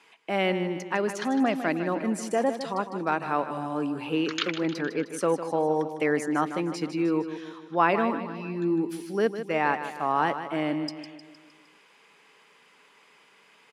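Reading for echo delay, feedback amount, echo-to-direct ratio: 0.154 s, 53%, -9.0 dB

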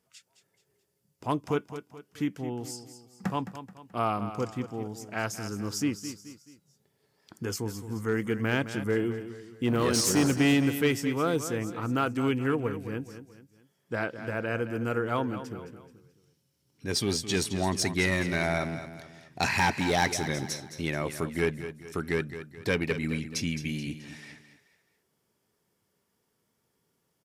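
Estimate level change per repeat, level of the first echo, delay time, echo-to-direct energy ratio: -7.5 dB, -11.5 dB, 0.215 s, -10.5 dB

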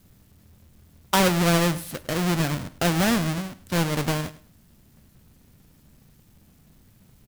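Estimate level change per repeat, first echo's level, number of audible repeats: -13.0 dB, -17.5 dB, 2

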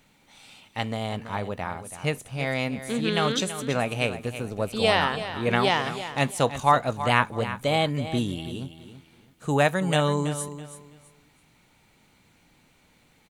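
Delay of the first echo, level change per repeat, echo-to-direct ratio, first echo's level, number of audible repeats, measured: 0.329 s, -12.0 dB, -11.5 dB, -12.0 dB, 2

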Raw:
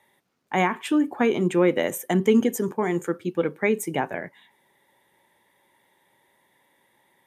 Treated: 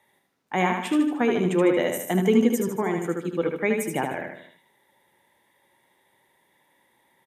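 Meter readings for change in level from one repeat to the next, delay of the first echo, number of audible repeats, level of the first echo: -6.5 dB, 76 ms, 4, -4.5 dB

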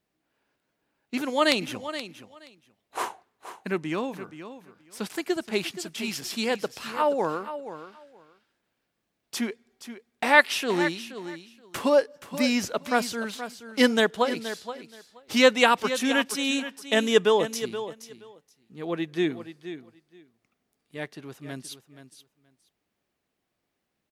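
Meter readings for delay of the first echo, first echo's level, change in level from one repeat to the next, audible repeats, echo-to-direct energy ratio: 0.475 s, -12.0 dB, -16.0 dB, 2, -12.0 dB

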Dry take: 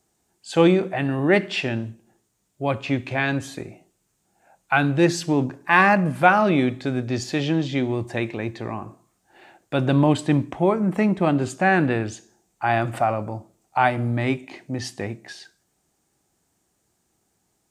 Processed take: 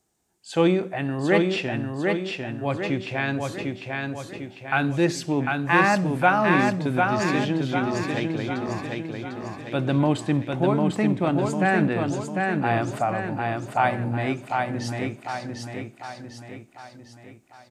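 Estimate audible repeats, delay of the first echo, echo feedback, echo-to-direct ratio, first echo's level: 6, 0.749 s, 49%, -2.5 dB, -3.5 dB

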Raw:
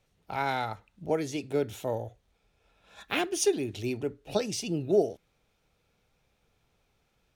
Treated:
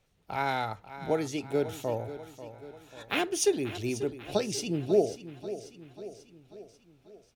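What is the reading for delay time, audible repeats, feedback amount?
0.54 s, 5, 54%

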